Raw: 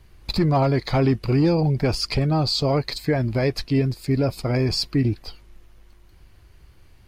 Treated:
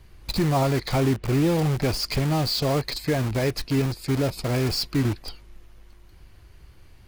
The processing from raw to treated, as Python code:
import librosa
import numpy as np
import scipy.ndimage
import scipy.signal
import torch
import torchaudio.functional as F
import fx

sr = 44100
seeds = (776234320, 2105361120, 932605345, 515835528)

p1 = fx.lowpass(x, sr, hz=3000.0, slope=12, at=(1.0, 1.59))
p2 = (np.mod(10.0 ** (24.0 / 20.0) * p1 + 1.0, 2.0) - 1.0) / 10.0 ** (24.0 / 20.0)
p3 = p1 + (p2 * librosa.db_to_amplitude(-5.5))
y = p3 * librosa.db_to_amplitude(-2.5)